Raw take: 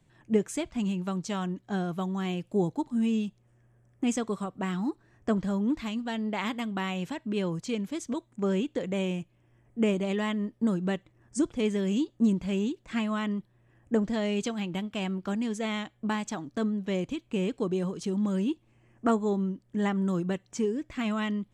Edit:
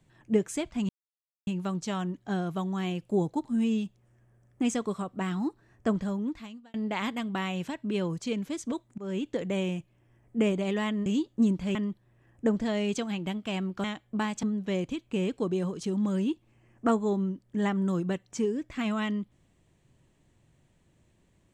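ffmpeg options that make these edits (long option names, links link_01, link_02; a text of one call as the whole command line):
ffmpeg -i in.wav -filter_complex "[0:a]asplit=8[link_01][link_02][link_03][link_04][link_05][link_06][link_07][link_08];[link_01]atrim=end=0.89,asetpts=PTS-STARTPTS,afade=type=out:start_time=0.886:duration=0.004:curve=hsin,apad=pad_dur=0.58[link_09];[link_02]atrim=start=0.89:end=6.16,asetpts=PTS-STARTPTS,afade=type=in:duration=0.004:curve=hsin,afade=type=out:start_time=4.45:duration=0.82[link_10];[link_03]atrim=start=6.16:end=8.4,asetpts=PTS-STARTPTS,afade=type=in:duration=0.004:curve=hsin,afade=type=out:start_time=2.236:duration=0.004:curve=hsin:silence=0.1[link_11];[link_04]atrim=start=8.4:end=10.482,asetpts=PTS-STARTPTS,afade=type=in:duration=0.29:silence=0.1[link_12];[link_05]atrim=start=11.878:end=12.572[link_13];[link_06]atrim=start=13.228:end=15.322[link_14];[link_07]atrim=start=15.738:end=16.332[link_15];[link_08]atrim=start=16.628[link_16];[link_09][link_10][link_11][link_12]concat=n=4:v=0:a=1[link_17];[link_17][link_13]acrossfade=duration=0.004:curve1=hsin:curve2=hsin[link_18];[link_18][link_14]acrossfade=duration=0.004:curve1=hsin:curve2=hsin[link_19];[link_19][link_15]acrossfade=duration=0.004:curve1=hsin:curve2=hsin[link_20];[link_20][link_16]acrossfade=duration=0.004:curve1=hsin:curve2=hsin" out.wav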